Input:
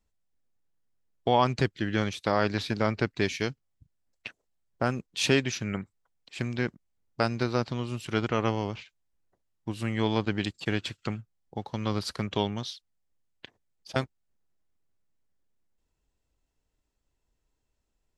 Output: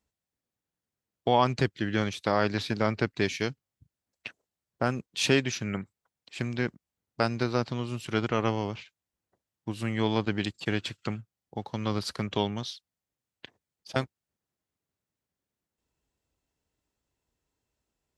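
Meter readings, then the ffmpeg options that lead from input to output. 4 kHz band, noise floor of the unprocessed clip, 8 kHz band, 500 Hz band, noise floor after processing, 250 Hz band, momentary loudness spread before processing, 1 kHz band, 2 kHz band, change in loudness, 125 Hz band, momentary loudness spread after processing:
0.0 dB, −79 dBFS, 0.0 dB, 0.0 dB, below −85 dBFS, 0.0 dB, 15 LU, 0.0 dB, 0.0 dB, 0.0 dB, −0.5 dB, 16 LU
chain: -af "highpass=71"

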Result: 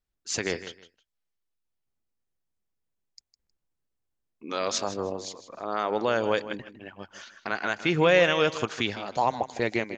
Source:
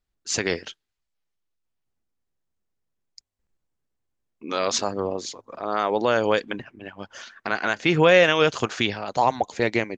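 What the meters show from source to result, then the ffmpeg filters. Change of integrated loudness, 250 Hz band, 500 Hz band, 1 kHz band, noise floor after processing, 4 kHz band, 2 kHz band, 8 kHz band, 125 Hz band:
−4.5 dB, −4.0 dB, −4.0 dB, −4.5 dB, −82 dBFS, −4.5 dB, −4.5 dB, −4.5 dB, −4.5 dB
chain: -af "aecho=1:1:157|314:0.2|0.0439,volume=-4.5dB"

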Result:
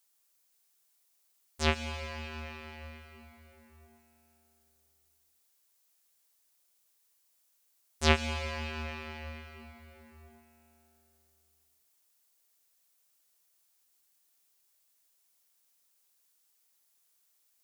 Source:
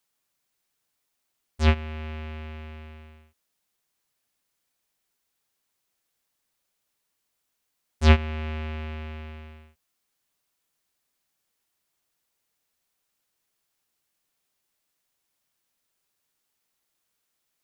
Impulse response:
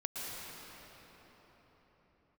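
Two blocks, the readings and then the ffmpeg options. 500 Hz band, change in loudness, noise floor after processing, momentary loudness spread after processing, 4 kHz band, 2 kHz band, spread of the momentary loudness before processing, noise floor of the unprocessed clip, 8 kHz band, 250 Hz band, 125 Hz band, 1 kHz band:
−3.5 dB, −7.5 dB, −72 dBFS, 23 LU, +0.5 dB, −1.5 dB, 22 LU, −79 dBFS, can't be measured, −7.5 dB, −11.5 dB, −2.0 dB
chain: -filter_complex "[0:a]bass=frequency=250:gain=-10,treble=frequency=4000:gain=6,asplit=2[link_01][link_02];[1:a]atrim=start_sample=2205,highshelf=frequency=5300:gain=11[link_03];[link_02][link_03]afir=irnorm=-1:irlink=0,volume=-8.5dB[link_04];[link_01][link_04]amix=inputs=2:normalize=0,volume=-4.5dB"

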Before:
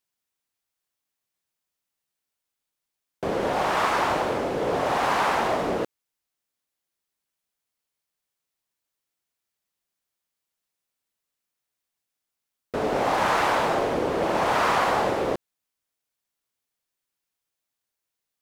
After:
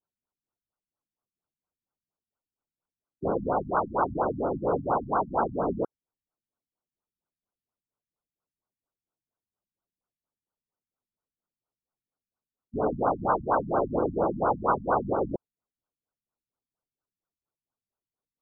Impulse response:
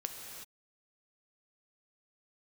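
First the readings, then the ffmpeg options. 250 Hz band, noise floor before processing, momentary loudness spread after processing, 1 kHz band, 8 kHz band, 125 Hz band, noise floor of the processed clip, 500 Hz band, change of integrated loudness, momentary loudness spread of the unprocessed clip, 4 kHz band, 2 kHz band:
−1.0 dB, −85 dBFS, 6 LU, −4.0 dB, below −35 dB, 0.0 dB, below −85 dBFS, −2.5 dB, −3.5 dB, 8 LU, below −40 dB, −12.5 dB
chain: -af "lowpass=frequency=3100:width_type=q:width=4.9,afftfilt=real='re*lt(b*sr/1024,250*pow(1600/250,0.5+0.5*sin(2*PI*4.3*pts/sr)))':imag='im*lt(b*sr/1024,250*pow(1600/250,0.5+0.5*sin(2*PI*4.3*pts/sr)))':win_size=1024:overlap=0.75"

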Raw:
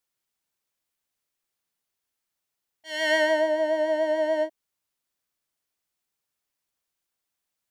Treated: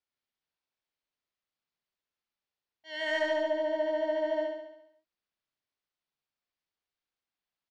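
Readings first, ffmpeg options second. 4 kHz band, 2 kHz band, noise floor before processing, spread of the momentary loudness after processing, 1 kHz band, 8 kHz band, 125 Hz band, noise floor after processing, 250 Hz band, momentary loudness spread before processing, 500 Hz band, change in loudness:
−7.5 dB, −7.5 dB, −84 dBFS, 13 LU, −6.5 dB, below −10 dB, can't be measured, below −85 dBFS, −5.5 dB, 8 LU, −6.0 dB, −6.5 dB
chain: -af "lowpass=frequency=4900:width=0.5412,lowpass=frequency=4900:width=1.3066,asoftclip=type=tanh:threshold=-13dB,aecho=1:1:69|138|207|276|345|414|483|552:0.631|0.36|0.205|0.117|0.0666|0.038|0.0216|0.0123,volume=-7dB"

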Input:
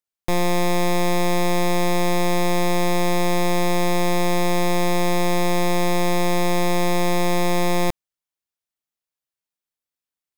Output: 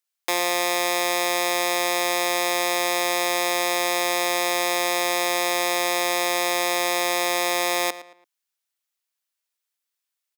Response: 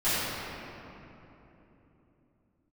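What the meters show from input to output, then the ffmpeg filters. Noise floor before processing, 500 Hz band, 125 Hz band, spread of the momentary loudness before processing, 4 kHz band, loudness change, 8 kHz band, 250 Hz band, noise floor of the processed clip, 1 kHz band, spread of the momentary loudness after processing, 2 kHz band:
below −85 dBFS, −3.0 dB, −26.0 dB, 0 LU, +5.0 dB, 0.0 dB, +5.5 dB, −10.5 dB, −83 dBFS, −0.5 dB, 0 LU, +4.0 dB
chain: -filter_complex "[0:a]acrossover=split=500[link_01][link_02];[link_02]acompressor=threshold=-23dB:ratio=2.5[link_03];[link_01][link_03]amix=inputs=2:normalize=0,highpass=frequency=300:width=0.5412,highpass=frequency=300:width=1.3066,tiltshelf=frequency=700:gain=-7.5,asplit=2[link_04][link_05];[link_05]adelay=112,lowpass=frequency=3800:poles=1,volume=-14dB,asplit=2[link_06][link_07];[link_07]adelay=112,lowpass=frequency=3800:poles=1,volume=0.34,asplit=2[link_08][link_09];[link_09]adelay=112,lowpass=frequency=3800:poles=1,volume=0.34[link_10];[link_04][link_06][link_08][link_10]amix=inputs=4:normalize=0"

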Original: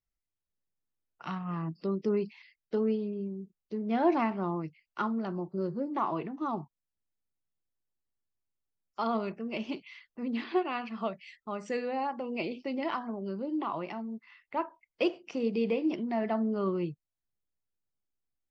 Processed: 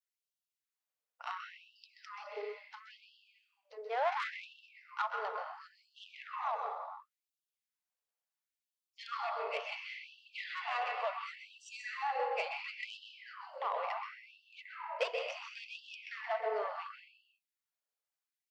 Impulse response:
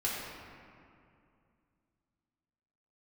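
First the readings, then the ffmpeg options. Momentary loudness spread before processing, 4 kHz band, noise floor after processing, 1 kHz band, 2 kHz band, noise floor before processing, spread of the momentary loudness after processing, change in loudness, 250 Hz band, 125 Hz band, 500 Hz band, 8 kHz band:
11 LU, +1.0 dB, below −85 dBFS, −2.5 dB, +1.5 dB, below −85 dBFS, 18 LU, −6.5 dB, below −40 dB, below −40 dB, −8.0 dB, can't be measured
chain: -filter_complex "[0:a]asplit=2[link_01][link_02];[1:a]atrim=start_sample=2205,afade=type=out:start_time=0.42:duration=0.01,atrim=end_sample=18963,adelay=129[link_03];[link_02][link_03]afir=irnorm=-1:irlink=0,volume=-7.5dB[link_04];[link_01][link_04]amix=inputs=2:normalize=0,adynamicequalizer=threshold=0.00224:dfrequency=2000:dqfactor=3:tfrequency=2000:tqfactor=3:attack=5:release=100:ratio=0.375:range=2:mode=boostabove:tftype=bell,aeval=exprs='(tanh(15.8*val(0)+0.3)-tanh(0.3))/15.8':channel_layout=same,afftfilt=real='re*gte(b*sr/1024,400*pow(2700/400,0.5+0.5*sin(2*PI*0.71*pts/sr)))':imag='im*gte(b*sr/1024,400*pow(2700/400,0.5+0.5*sin(2*PI*0.71*pts/sr)))':win_size=1024:overlap=0.75"

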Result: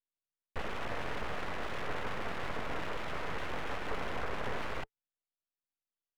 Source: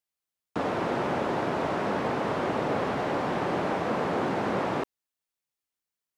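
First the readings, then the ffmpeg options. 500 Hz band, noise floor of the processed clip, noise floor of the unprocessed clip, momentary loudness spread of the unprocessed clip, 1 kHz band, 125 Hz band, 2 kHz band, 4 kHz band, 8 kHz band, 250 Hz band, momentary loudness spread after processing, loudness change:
−13.0 dB, below −85 dBFS, below −85 dBFS, 3 LU, −11.0 dB, −9.5 dB, −5.0 dB, −4.0 dB, −5.5 dB, −15.5 dB, 3 LU, −10.5 dB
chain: -af "highpass=frequency=110:width=0.5412,highpass=frequency=110:width=1.3066,equalizer=frequency=130:width_type=q:width=4:gain=-7,equalizer=frequency=220:width_type=q:width=4:gain=9,equalizer=frequency=400:width_type=q:width=4:gain=-4,equalizer=frequency=600:width_type=q:width=4:gain=-7,equalizer=frequency=1700:width_type=q:width=4:gain=6,lowpass=frequency=2600:width=0.5412,lowpass=frequency=2600:width=1.3066,aeval=exprs='abs(val(0))':channel_layout=same,volume=-6.5dB"

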